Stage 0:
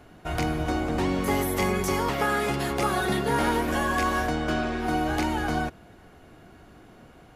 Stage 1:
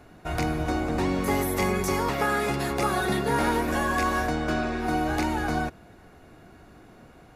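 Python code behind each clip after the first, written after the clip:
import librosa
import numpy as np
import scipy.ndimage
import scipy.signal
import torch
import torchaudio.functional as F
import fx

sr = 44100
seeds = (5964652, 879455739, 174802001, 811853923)

y = fx.notch(x, sr, hz=3100.0, q=9.1)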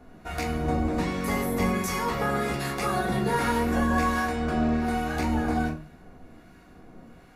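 y = fx.harmonic_tremolo(x, sr, hz=1.3, depth_pct=50, crossover_hz=1100.0)
y = fx.room_shoebox(y, sr, seeds[0], volume_m3=230.0, walls='furnished', distance_m=1.8)
y = y * 10.0 ** (-2.0 / 20.0)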